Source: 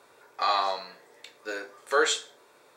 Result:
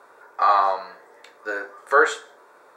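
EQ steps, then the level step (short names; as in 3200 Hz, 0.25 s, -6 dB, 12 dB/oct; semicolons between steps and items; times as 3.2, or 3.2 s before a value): resonant high shelf 2000 Hz -9.5 dB, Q 1.5; dynamic EQ 5500 Hz, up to -5 dB, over -46 dBFS, Q 0.83; HPF 450 Hz 6 dB/oct; +7.5 dB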